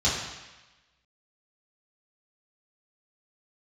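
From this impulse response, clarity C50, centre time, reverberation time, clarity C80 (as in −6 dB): 2.0 dB, 65 ms, 1.1 s, 4.0 dB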